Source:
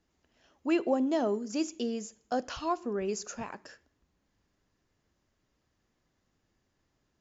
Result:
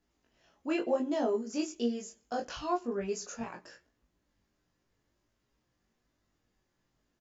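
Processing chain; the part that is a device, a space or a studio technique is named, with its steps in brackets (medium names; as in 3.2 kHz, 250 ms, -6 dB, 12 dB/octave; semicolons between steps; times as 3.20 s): double-tracked vocal (doubling 17 ms -4.5 dB; chorus 0.96 Hz, delay 20 ms, depth 2.9 ms)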